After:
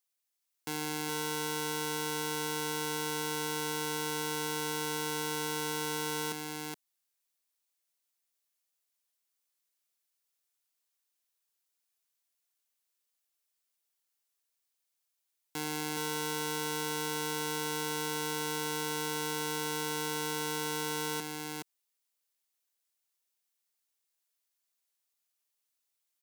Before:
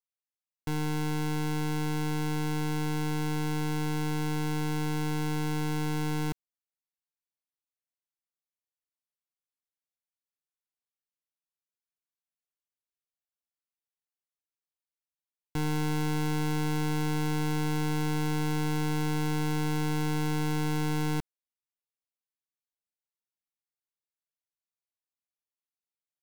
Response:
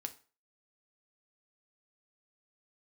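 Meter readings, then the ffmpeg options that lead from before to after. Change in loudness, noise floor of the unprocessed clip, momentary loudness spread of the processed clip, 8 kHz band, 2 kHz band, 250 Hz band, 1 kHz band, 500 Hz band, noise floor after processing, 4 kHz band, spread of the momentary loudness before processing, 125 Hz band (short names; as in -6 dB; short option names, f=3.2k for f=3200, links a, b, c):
-3.0 dB, under -85 dBFS, 5 LU, +6.5 dB, +0.5 dB, -9.5 dB, -0.5 dB, 0.0 dB, -83 dBFS, +4.5 dB, 2 LU, -15.5 dB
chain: -filter_complex "[0:a]highshelf=f=3.1k:g=9,alimiter=limit=-24dB:level=0:latency=1,highpass=300,asplit=2[a][b];[b]aecho=0:1:419:0.631[c];[a][c]amix=inputs=2:normalize=0,volume=3.5dB"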